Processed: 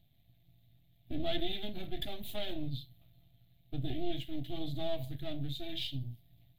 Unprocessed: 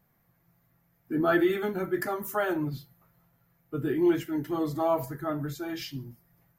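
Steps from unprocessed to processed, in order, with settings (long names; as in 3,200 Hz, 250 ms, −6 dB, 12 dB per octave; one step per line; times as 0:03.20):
gain on one half-wave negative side −12 dB
drawn EQ curve 120 Hz 0 dB, 180 Hz −12 dB, 280 Hz −9 dB, 460 Hz −23 dB, 680 Hz −9 dB, 970 Hz −29 dB, 1,400 Hz −29 dB, 3,700 Hz +8 dB, 5,300 Hz −19 dB, 9,700 Hz −15 dB
downward compressor 1.5 to 1, threshold −48 dBFS, peak gain reduction 7.5 dB
level +9.5 dB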